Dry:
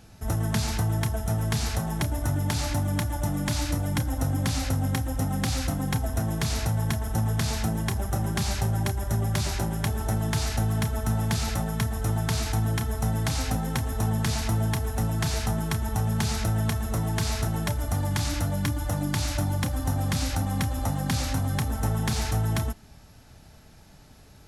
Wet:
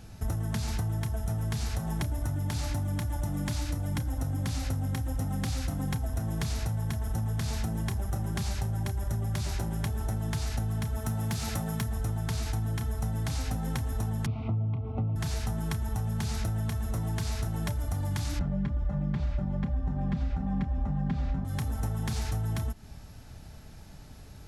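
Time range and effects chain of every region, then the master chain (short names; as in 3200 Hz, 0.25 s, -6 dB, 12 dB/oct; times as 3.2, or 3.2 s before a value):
10.97–11.88 HPF 87 Hz + high shelf 8800 Hz +4.5 dB + hard clip -19 dBFS
14.26–15.16 Butterworth band-stop 1700 Hz, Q 1.6 + speaker cabinet 110–2300 Hz, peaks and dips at 110 Hz +9 dB, 250 Hz +4 dB, 920 Hz -5 dB
18.39–21.45 LPF 2400 Hz + low shelf 390 Hz +10 dB + comb 5 ms, depth 82%
whole clip: low shelf 160 Hz +6.5 dB; compressor, threshold -28 dBFS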